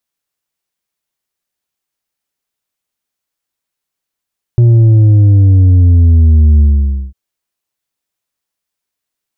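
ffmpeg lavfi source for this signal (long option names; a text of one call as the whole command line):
ffmpeg -f lavfi -i "aevalsrc='0.631*clip((2.55-t)/0.53,0,1)*tanh(1.78*sin(2*PI*120*2.55/log(65/120)*(exp(log(65/120)*t/2.55)-1)))/tanh(1.78)':duration=2.55:sample_rate=44100" out.wav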